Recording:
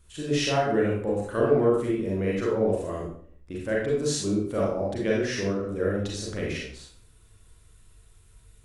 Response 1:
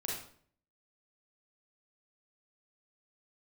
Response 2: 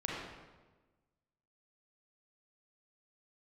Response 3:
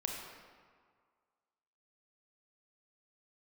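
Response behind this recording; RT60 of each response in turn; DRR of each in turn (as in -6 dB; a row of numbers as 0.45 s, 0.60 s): 1; 0.55 s, 1.3 s, 1.9 s; -4.0 dB, -4.5 dB, 0.0 dB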